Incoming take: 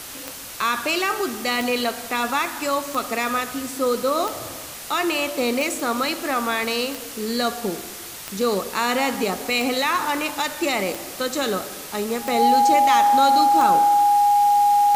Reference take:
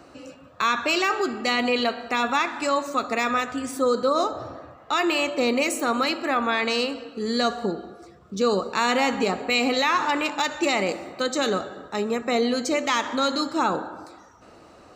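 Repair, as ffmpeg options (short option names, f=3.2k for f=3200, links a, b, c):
-af "adeclick=t=4,bandreject=f=820:w=30,afwtdn=0.018"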